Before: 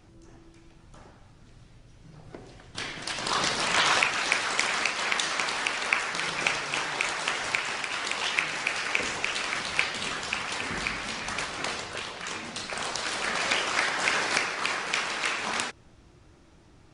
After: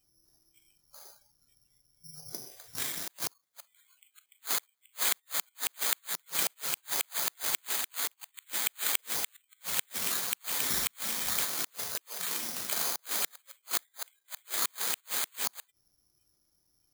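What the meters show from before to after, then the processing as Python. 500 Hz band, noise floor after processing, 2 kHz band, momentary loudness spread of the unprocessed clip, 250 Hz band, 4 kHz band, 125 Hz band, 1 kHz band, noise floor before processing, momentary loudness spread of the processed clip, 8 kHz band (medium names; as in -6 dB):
-11.5 dB, -75 dBFS, -13.5 dB, 10 LU, -10.5 dB, -7.0 dB, -11.0 dB, -12.5 dB, -55 dBFS, 13 LU, +1.5 dB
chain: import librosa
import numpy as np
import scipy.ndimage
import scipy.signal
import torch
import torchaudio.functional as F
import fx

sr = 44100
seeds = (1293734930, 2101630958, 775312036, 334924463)

y = fx.gate_flip(x, sr, shuts_db=-17.0, range_db=-38)
y = (np.kron(scipy.signal.resample_poly(y, 1, 8), np.eye(8)[0]) * 8)[:len(y)]
y = fx.noise_reduce_blind(y, sr, reduce_db=20)
y = y * 10.0 ** (-6.0 / 20.0)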